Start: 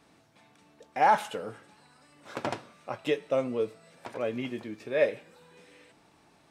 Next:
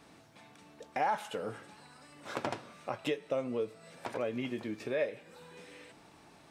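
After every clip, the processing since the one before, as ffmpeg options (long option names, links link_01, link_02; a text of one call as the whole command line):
ffmpeg -i in.wav -af "acompressor=threshold=-38dB:ratio=2.5,volume=3.5dB" out.wav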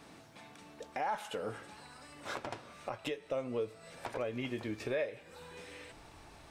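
ffmpeg -i in.wav -af "asubboost=boost=8.5:cutoff=64,alimiter=level_in=4.5dB:limit=-24dB:level=0:latency=1:release=416,volume=-4.5dB,volume=3dB" out.wav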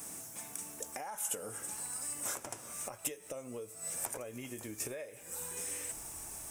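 ffmpeg -i in.wav -af "acompressor=threshold=-43dB:ratio=4,aexciter=amount=15.6:drive=5.9:freq=6300,volume=1dB" out.wav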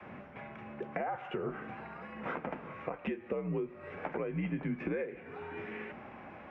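ffmpeg -i in.wav -af "adynamicequalizer=threshold=0.00126:dfrequency=270:dqfactor=1.7:tfrequency=270:tqfactor=1.7:attack=5:release=100:ratio=0.375:range=3:mode=boostabove:tftype=bell,highpass=frequency=180:width_type=q:width=0.5412,highpass=frequency=180:width_type=q:width=1.307,lowpass=frequency=2600:width_type=q:width=0.5176,lowpass=frequency=2600:width_type=q:width=0.7071,lowpass=frequency=2600:width_type=q:width=1.932,afreqshift=-76,volume=7dB" out.wav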